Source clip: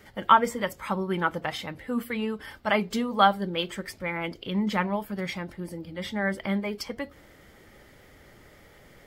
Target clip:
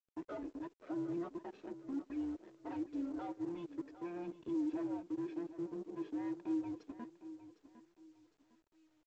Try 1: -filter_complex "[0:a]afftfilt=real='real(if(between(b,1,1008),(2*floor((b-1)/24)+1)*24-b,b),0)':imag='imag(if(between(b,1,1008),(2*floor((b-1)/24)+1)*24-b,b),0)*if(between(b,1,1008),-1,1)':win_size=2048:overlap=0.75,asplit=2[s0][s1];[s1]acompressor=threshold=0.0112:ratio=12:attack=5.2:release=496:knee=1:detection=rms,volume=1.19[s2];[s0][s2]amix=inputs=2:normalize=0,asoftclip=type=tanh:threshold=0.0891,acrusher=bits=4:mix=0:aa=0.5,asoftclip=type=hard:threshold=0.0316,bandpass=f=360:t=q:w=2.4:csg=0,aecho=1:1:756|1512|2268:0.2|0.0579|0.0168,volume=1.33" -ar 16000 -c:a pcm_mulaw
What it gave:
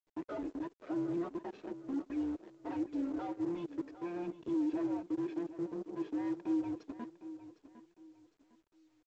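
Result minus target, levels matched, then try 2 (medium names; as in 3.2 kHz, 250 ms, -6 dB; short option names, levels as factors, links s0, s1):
compression: peak gain reduction +8 dB; saturation: distortion -4 dB
-filter_complex "[0:a]afftfilt=real='real(if(between(b,1,1008),(2*floor((b-1)/24)+1)*24-b,b),0)':imag='imag(if(between(b,1,1008),(2*floor((b-1)/24)+1)*24-b,b),0)*if(between(b,1,1008),-1,1)':win_size=2048:overlap=0.75,asplit=2[s0][s1];[s1]acompressor=threshold=0.0299:ratio=12:attack=5.2:release=496:knee=1:detection=rms,volume=1.19[s2];[s0][s2]amix=inputs=2:normalize=0,asoftclip=type=tanh:threshold=0.0299,acrusher=bits=4:mix=0:aa=0.5,asoftclip=type=hard:threshold=0.0316,bandpass=f=360:t=q:w=2.4:csg=0,aecho=1:1:756|1512|2268:0.2|0.0579|0.0168,volume=1.33" -ar 16000 -c:a pcm_mulaw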